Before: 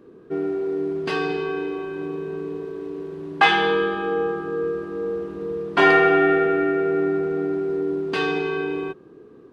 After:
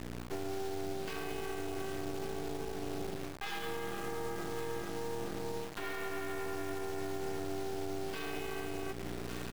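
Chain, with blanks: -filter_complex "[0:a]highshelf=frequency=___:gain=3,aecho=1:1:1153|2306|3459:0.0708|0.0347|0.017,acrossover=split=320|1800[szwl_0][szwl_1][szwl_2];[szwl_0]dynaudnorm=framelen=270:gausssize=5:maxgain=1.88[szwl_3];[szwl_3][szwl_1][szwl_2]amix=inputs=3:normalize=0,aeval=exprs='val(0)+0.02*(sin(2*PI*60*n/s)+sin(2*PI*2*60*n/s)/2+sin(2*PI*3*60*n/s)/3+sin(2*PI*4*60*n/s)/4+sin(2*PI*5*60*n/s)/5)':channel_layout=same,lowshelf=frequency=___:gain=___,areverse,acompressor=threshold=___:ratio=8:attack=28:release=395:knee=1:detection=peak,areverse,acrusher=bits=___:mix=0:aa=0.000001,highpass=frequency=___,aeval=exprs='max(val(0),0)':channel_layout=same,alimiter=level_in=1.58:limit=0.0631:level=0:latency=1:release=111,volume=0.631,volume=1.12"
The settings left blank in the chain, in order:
2100, 120, -6, 0.0316, 6, 88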